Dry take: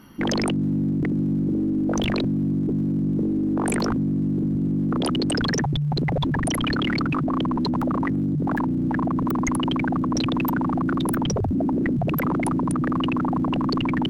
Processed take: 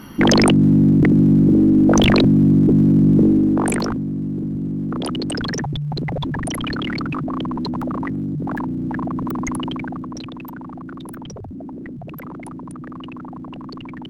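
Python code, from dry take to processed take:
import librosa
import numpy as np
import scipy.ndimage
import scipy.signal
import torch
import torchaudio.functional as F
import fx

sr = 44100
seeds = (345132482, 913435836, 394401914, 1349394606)

y = fx.gain(x, sr, db=fx.line((3.27, 10.0), (4.02, -1.0), (9.58, -1.0), (10.36, -10.5)))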